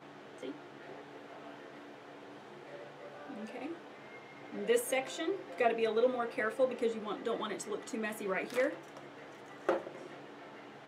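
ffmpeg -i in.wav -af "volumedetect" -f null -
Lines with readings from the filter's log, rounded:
mean_volume: -37.5 dB
max_volume: -17.9 dB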